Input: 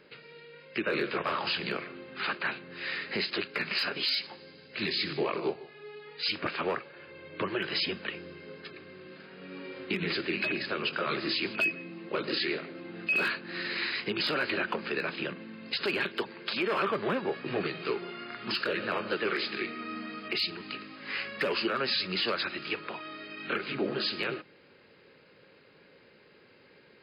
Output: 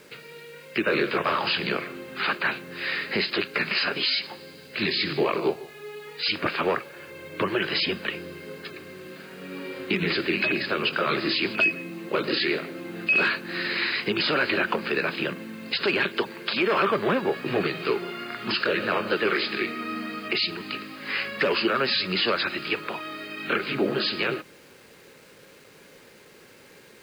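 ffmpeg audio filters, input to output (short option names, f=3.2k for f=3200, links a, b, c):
-filter_complex "[0:a]lowpass=7.4k,acrusher=bits=9:mix=0:aa=0.000001,acrossover=split=5500[a][b];[b]acompressor=threshold=-52dB:ratio=4:attack=1:release=60[c];[a][c]amix=inputs=2:normalize=0,volume=6.5dB"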